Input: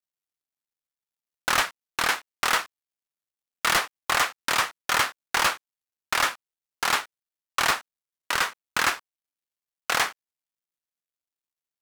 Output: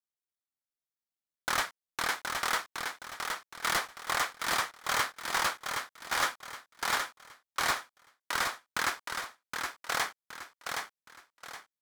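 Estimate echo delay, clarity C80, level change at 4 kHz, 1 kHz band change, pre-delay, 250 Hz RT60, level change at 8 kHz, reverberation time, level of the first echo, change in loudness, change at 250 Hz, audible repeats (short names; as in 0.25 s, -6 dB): 0.769 s, none, -6.5 dB, -5.5 dB, none, none, -5.5 dB, none, -5.0 dB, -7.5 dB, -5.5 dB, 4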